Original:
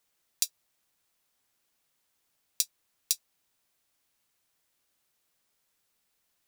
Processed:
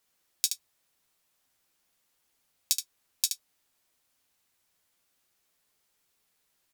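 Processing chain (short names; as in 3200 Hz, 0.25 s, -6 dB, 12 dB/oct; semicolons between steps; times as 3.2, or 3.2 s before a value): early reflections 11 ms -6.5 dB, 71 ms -6.5 dB; speed mistake 25 fps video run at 24 fps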